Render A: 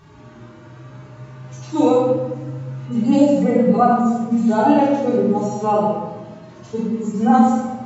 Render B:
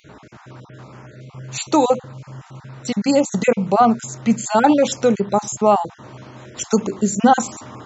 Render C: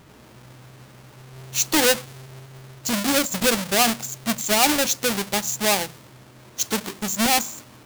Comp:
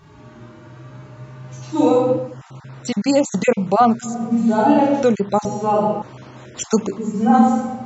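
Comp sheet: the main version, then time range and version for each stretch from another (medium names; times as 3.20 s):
A
2.28–4.13 s: from B, crossfade 0.24 s
5.03–5.45 s: from B
6.02–6.98 s: from B
not used: C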